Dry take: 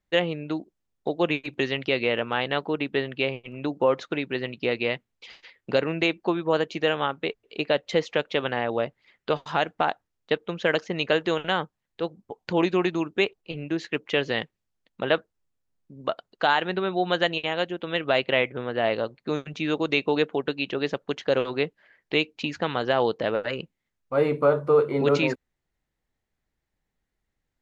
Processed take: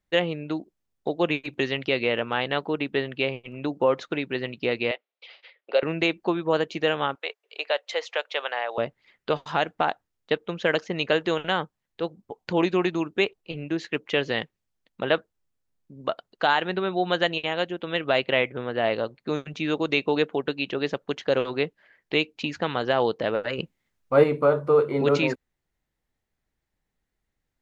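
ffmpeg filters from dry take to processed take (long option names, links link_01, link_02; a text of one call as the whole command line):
ffmpeg -i in.wav -filter_complex "[0:a]asettb=1/sr,asplit=3[link_01][link_02][link_03];[link_01]atrim=end=4.914[link_04];[link_02]atrim=start=4.91:end=5.83,asetpts=PTS-STARTPTS,afade=type=in:duration=0.004:curve=qsin,afade=type=out:start_time=0.916:duration=0.004:curve=qsin,highpass=frequency=460:width=0.5412,highpass=frequency=460:width=1.3066,equalizer=frequency=580:width_type=q:width=4:gain=4,equalizer=frequency=990:width_type=q:width=4:gain=-5,equalizer=frequency=1700:width_type=q:width=4:gain=-5,lowpass=frequency=4100:width=0.5412,lowpass=frequency=4100:width=1.3066[link_05];[link_03]atrim=start=5.826[link_06];[link_04][link_05]acrossfade=duration=0.004:curve1=hsin:curve2=qsin[link_07];[link_07][link_06]acrossfade=duration=0.004:curve1=qsin:curve2=hsin,asettb=1/sr,asplit=3[link_08][link_09][link_10];[link_08]atrim=end=7.154[link_11];[link_09]atrim=start=7.15:end=8.78,asetpts=PTS-STARTPTS,afade=type=in:duration=0.004:curve=qsin,afade=type=out:start_time=1.626:duration=0.004:curve=qsin,highpass=frequency=560:width=0.5412,highpass=frequency=560:width=1.3066[link_12];[link_10]atrim=start=8.776[link_13];[link_11][link_12]acrossfade=duration=0.004:curve1=hsin:curve2=qsin[link_14];[link_14][link_13]acrossfade=duration=0.004:curve1=qsin:curve2=hsin,asettb=1/sr,asplit=3[link_15][link_16][link_17];[link_15]atrim=end=23.584[link_18];[link_16]atrim=start=23.58:end=24.24,asetpts=PTS-STARTPTS,afade=type=in:duration=0.004:curve=qsin,afade=type=out:start_time=0.656:duration=0.004:curve=qsin,acontrast=36[link_19];[link_17]atrim=start=24.236[link_20];[link_18][link_19]acrossfade=duration=0.004:curve1=hsin:curve2=qsin[link_21];[link_21][link_20]acrossfade=duration=0.004:curve1=qsin:curve2=hsin" out.wav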